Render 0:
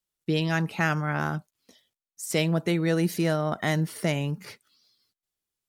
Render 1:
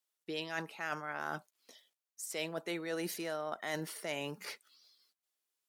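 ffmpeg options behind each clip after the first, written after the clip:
ffmpeg -i in.wav -af "highpass=440,areverse,acompressor=threshold=-35dB:ratio=6,areverse" out.wav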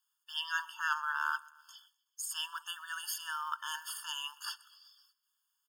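ffmpeg -i in.wav -af "acrusher=bits=8:mode=log:mix=0:aa=0.000001,aecho=1:1:126|252|378|504:0.0631|0.0353|0.0198|0.0111,afftfilt=real='re*eq(mod(floor(b*sr/1024/900),2),1)':imag='im*eq(mod(floor(b*sr/1024/900),2),1)':win_size=1024:overlap=0.75,volume=8dB" out.wav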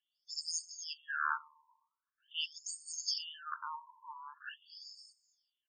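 ffmpeg -i in.wav -af "aexciter=amount=5.2:drive=4.7:freq=5200,afftfilt=real='re*lt(hypot(re,im),0.141)':imag='im*lt(hypot(re,im),0.141)':win_size=1024:overlap=0.75,afftfilt=real='re*between(b*sr/1024,750*pow(6300/750,0.5+0.5*sin(2*PI*0.44*pts/sr))/1.41,750*pow(6300/750,0.5+0.5*sin(2*PI*0.44*pts/sr))*1.41)':imag='im*between(b*sr/1024,750*pow(6300/750,0.5+0.5*sin(2*PI*0.44*pts/sr))/1.41,750*pow(6300/750,0.5+0.5*sin(2*PI*0.44*pts/sr))*1.41)':win_size=1024:overlap=0.75,volume=2dB" out.wav

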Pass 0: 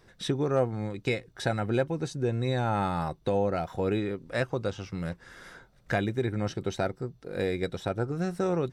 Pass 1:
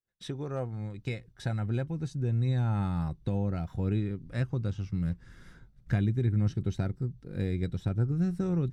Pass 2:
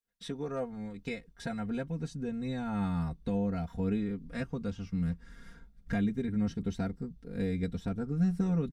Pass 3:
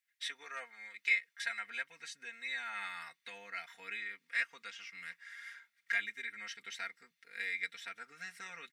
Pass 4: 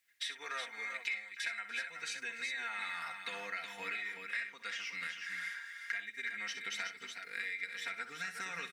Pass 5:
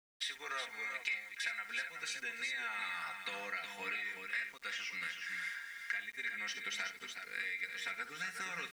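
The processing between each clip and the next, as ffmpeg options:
ffmpeg -i in.wav -af "asubboost=boost=8.5:cutoff=200,agate=range=-33dB:threshold=-41dB:ratio=3:detection=peak,volume=-9dB" out.wav
ffmpeg -i in.wav -af "aecho=1:1:4.3:0.95,volume=-2.5dB" out.wav
ffmpeg -i in.wav -af "highpass=frequency=2000:width_type=q:width=4.6,volume=3dB" out.wav
ffmpeg -i in.wav -filter_complex "[0:a]acompressor=threshold=-46dB:ratio=6,asplit=2[link_01][link_02];[link_02]aecho=0:1:63|292|362|373:0.282|0.106|0.237|0.447[link_03];[link_01][link_03]amix=inputs=2:normalize=0,volume=8.5dB" out.wav
ffmpeg -i in.wav -af "aeval=exprs='val(0)*gte(abs(val(0)),0.0015)':channel_layout=same" out.wav

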